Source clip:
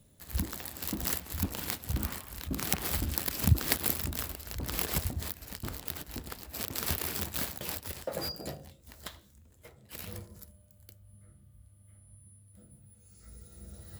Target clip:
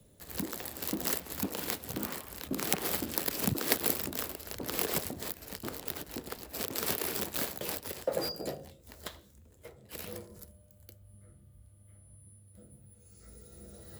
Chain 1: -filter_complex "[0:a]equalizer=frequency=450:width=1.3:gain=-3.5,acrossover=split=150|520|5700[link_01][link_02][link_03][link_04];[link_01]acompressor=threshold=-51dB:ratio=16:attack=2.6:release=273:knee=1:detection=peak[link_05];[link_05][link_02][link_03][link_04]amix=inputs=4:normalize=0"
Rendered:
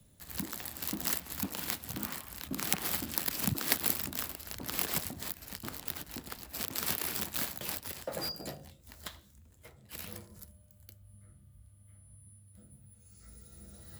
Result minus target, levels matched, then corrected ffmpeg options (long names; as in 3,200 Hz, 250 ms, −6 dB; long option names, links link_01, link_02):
500 Hz band −7.5 dB
-filter_complex "[0:a]equalizer=frequency=450:width=1.3:gain=6.5,acrossover=split=150|520|5700[link_01][link_02][link_03][link_04];[link_01]acompressor=threshold=-51dB:ratio=16:attack=2.6:release=273:knee=1:detection=peak[link_05];[link_05][link_02][link_03][link_04]amix=inputs=4:normalize=0"